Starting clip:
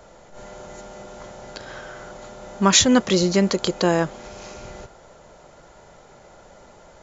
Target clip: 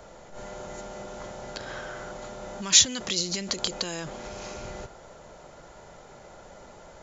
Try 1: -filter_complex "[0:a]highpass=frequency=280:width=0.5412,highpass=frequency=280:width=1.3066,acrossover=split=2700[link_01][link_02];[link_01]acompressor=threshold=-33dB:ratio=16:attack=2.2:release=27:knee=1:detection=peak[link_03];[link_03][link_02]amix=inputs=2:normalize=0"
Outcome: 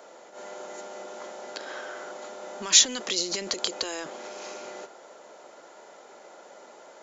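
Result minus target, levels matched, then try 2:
250 Hz band −4.0 dB
-filter_complex "[0:a]acrossover=split=2700[link_01][link_02];[link_01]acompressor=threshold=-33dB:ratio=16:attack=2.2:release=27:knee=1:detection=peak[link_03];[link_03][link_02]amix=inputs=2:normalize=0"

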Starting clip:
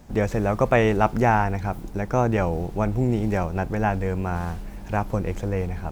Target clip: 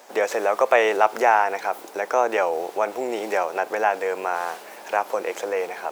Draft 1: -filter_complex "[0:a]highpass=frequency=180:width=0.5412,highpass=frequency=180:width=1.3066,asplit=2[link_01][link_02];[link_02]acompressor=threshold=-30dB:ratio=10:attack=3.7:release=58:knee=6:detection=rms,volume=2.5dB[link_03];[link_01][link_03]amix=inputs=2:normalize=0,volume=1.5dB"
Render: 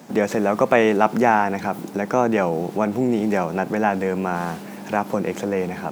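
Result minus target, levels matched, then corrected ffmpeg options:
250 Hz band +13.0 dB
-filter_complex "[0:a]highpass=frequency=460:width=0.5412,highpass=frequency=460:width=1.3066,asplit=2[link_01][link_02];[link_02]acompressor=threshold=-30dB:ratio=10:attack=3.7:release=58:knee=6:detection=rms,volume=2.5dB[link_03];[link_01][link_03]amix=inputs=2:normalize=0,volume=1.5dB"

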